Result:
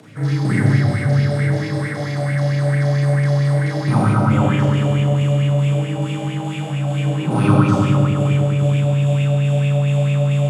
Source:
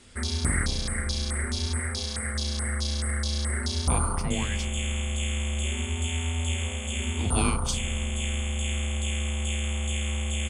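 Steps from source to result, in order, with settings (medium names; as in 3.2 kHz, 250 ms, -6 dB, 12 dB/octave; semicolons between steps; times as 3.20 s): CVSD coder 64 kbps; high-pass 56 Hz; tilt EQ -3.5 dB/octave; upward compressor, threshold -38 dBFS; frequency shift +67 Hz; filtered feedback delay 102 ms, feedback 82%, low-pass 4.2 kHz, level -4 dB; Schroeder reverb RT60 0.66 s, combs from 29 ms, DRR -4 dB; sweeping bell 4.5 Hz 630–2500 Hz +12 dB; trim -4.5 dB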